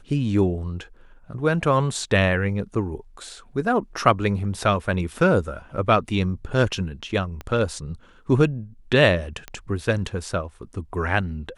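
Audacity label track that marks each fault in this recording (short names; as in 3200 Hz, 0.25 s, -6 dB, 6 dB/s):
7.410000	7.410000	pop -20 dBFS
9.480000	9.480000	pop -18 dBFS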